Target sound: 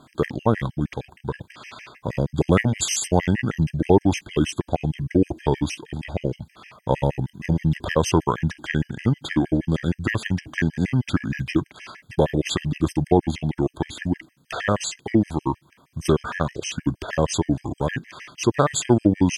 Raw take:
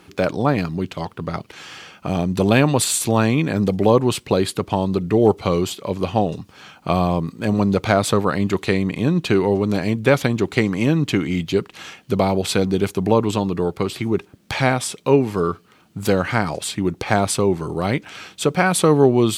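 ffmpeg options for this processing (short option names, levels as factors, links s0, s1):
-af "asetrate=35002,aresample=44100,atempo=1.25992,afftfilt=real='re*gt(sin(2*PI*6.4*pts/sr)*(1-2*mod(floor(b*sr/1024/1600),2)),0)':imag='im*gt(sin(2*PI*6.4*pts/sr)*(1-2*mod(floor(b*sr/1024/1600),2)),0)':win_size=1024:overlap=0.75"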